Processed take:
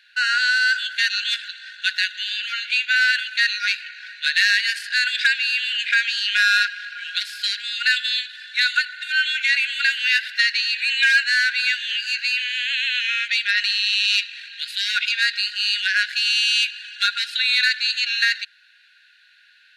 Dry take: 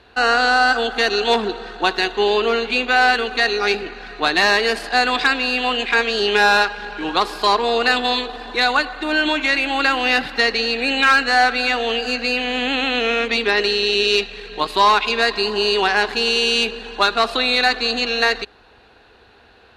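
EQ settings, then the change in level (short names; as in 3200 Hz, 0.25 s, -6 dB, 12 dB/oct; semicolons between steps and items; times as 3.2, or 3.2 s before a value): brick-wall FIR high-pass 1400 Hz; 0.0 dB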